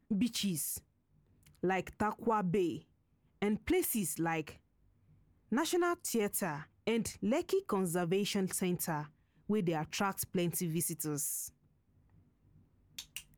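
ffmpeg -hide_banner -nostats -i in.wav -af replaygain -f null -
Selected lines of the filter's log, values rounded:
track_gain = +15.6 dB
track_peak = 0.060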